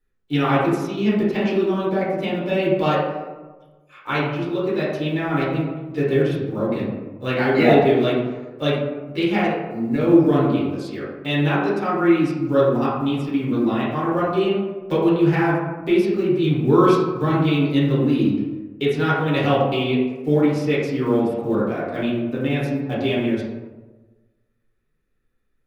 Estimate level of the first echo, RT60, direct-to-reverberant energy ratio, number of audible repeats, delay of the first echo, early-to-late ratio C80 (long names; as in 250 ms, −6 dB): no echo audible, 1.3 s, −8.5 dB, no echo audible, no echo audible, 3.0 dB